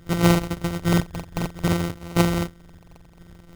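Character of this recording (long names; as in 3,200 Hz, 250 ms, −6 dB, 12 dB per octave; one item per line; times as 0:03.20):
a buzz of ramps at a fixed pitch in blocks of 256 samples
tremolo saw up 3.6 Hz, depth 35%
phaser sweep stages 2, 0.59 Hz, lowest notch 450–2,400 Hz
aliases and images of a low sample rate 1,700 Hz, jitter 0%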